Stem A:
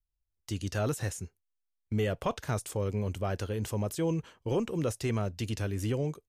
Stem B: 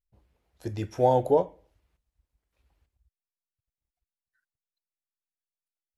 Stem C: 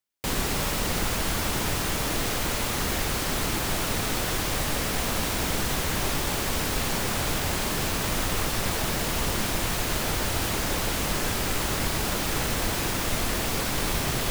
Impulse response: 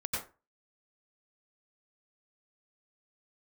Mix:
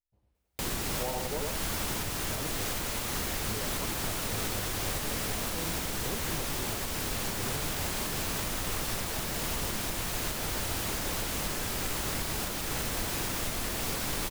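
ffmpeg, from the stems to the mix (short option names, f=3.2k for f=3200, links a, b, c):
-filter_complex "[0:a]adelay=1550,volume=-8.5dB[a];[1:a]volume=-10dB,asplit=2[b][c];[c]volume=-3.5dB[d];[2:a]adelay=350,volume=-4dB[e];[d]aecho=0:1:99:1[f];[a][b][e][f]amix=inputs=4:normalize=0,highshelf=f=5.3k:g=4,alimiter=limit=-21.5dB:level=0:latency=1:release=432"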